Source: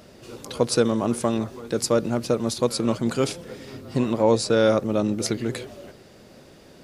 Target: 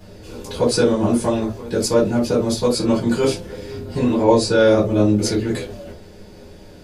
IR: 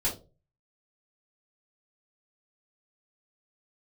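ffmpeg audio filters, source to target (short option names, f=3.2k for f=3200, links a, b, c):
-filter_complex "[0:a]lowshelf=f=75:g=5[a];[1:a]atrim=start_sample=2205,afade=t=out:st=0.14:d=0.01,atrim=end_sample=6615[b];[a][b]afir=irnorm=-1:irlink=0,volume=-3dB"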